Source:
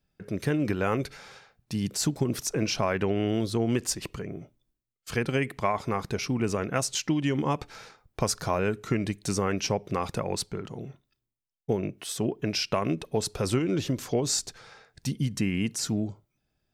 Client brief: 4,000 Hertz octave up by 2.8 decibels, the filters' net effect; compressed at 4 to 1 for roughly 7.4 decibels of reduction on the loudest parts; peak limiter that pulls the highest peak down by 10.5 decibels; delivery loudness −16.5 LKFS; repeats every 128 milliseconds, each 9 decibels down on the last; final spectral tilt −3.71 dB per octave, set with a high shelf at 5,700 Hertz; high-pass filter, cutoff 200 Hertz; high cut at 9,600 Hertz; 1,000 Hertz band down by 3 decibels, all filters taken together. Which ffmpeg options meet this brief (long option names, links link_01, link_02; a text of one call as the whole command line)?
ffmpeg -i in.wav -af "highpass=200,lowpass=9600,equalizer=frequency=1000:width_type=o:gain=-4,equalizer=frequency=4000:width_type=o:gain=7.5,highshelf=frequency=5700:gain=-7,acompressor=threshold=-32dB:ratio=4,alimiter=level_in=3.5dB:limit=-24dB:level=0:latency=1,volume=-3.5dB,aecho=1:1:128|256|384|512:0.355|0.124|0.0435|0.0152,volume=22dB" out.wav